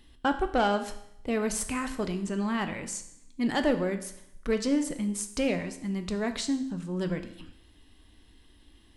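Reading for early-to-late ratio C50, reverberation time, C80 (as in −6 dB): 12.0 dB, 0.75 s, 14.0 dB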